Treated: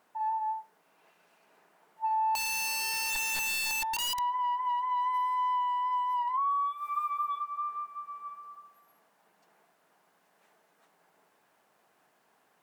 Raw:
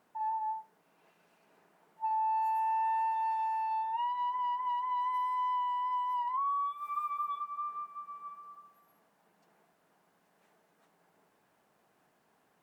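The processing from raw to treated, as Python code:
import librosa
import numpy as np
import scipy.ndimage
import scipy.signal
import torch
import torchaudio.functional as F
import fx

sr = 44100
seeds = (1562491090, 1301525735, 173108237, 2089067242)

y = fx.low_shelf(x, sr, hz=320.0, db=-10.5)
y = fx.overflow_wrap(y, sr, gain_db=32.0, at=(2.35, 4.19))
y = F.gain(torch.from_numpy(y), 4.0).numpy()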